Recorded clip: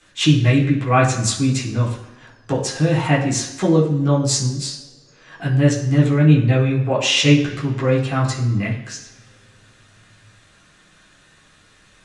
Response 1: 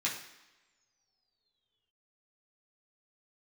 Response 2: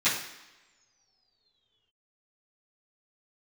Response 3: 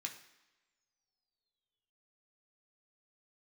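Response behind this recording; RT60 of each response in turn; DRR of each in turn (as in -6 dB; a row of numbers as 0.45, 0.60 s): 1; not exponential, not exponential, not exponential; -5.5, -15.0, 2.0 dB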